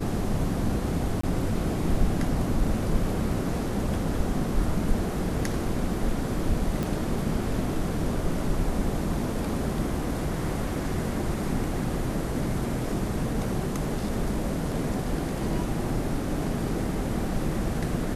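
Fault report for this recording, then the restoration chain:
0:01.21–0:01.23: drop-out 24 ms
0:06.83: click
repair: click removal
repair the gap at 0:01.21, 24 ms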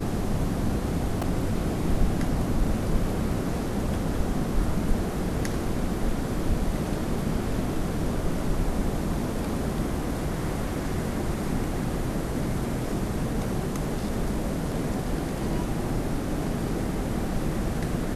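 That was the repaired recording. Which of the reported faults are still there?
0:06.83: click

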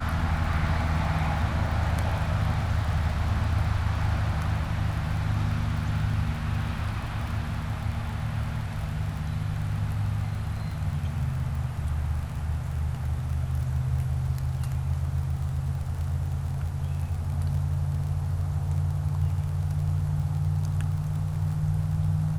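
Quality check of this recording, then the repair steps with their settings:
surface crackle 32 per second −34 dBFS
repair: click removal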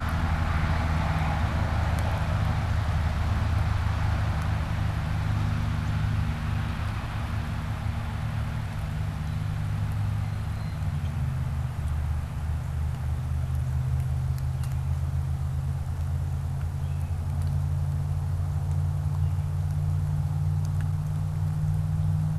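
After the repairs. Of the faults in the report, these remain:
none of them is left

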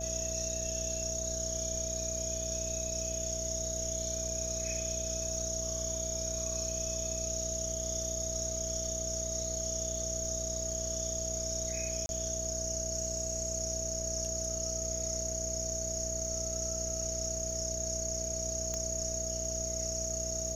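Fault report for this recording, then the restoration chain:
mains buzz 60 Hz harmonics 10 −41 dBFS
surface crackle 21 per second −45 dBFS
whistle 650 Hz −39 dBFS
0:12.06–0:12.09: drop-out 31 ms
0:18.74: click −22 dBFS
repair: click removal
hum removal 60 Hz, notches 10
notch filter 650 Hz, Q 30
repair the gap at 0:12.06, 31 ms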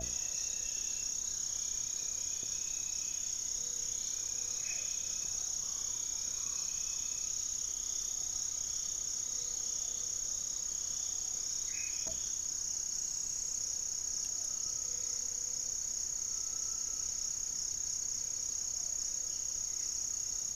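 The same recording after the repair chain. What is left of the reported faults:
none of them is left

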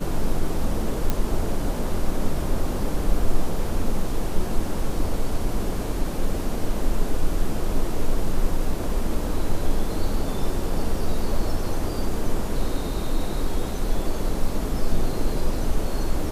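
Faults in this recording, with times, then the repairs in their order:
0:01.10: click −9 dBFS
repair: click removal

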